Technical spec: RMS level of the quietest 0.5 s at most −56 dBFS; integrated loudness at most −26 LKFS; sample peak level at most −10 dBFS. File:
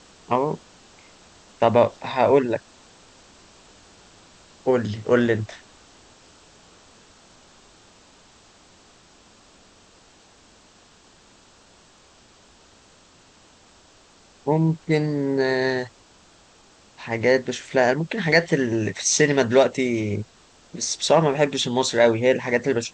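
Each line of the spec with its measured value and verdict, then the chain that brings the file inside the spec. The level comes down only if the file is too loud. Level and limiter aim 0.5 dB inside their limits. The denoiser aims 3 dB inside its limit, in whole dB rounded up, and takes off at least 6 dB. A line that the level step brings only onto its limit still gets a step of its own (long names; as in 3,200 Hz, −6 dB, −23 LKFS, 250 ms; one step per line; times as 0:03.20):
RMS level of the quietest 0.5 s −54 dBFS: out of spec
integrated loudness −21.5 LKFS: out of spec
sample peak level −4.5 dBFS: out of spec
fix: level −5 dB
brickwall limiter −10.5 dBFS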